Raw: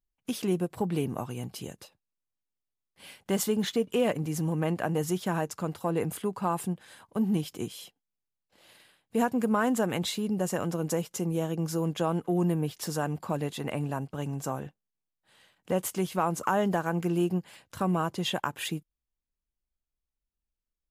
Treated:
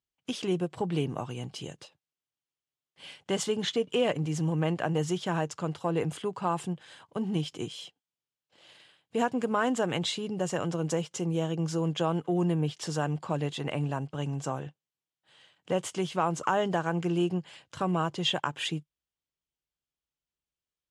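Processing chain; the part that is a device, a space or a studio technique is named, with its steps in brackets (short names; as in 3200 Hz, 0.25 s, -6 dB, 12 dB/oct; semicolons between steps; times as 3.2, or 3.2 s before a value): car door speaker (speaker cabinet 94–8100 Hz, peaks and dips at 150 Hz +4 dB, 210 Hz -7 dB, 3100 Hz +6 dB)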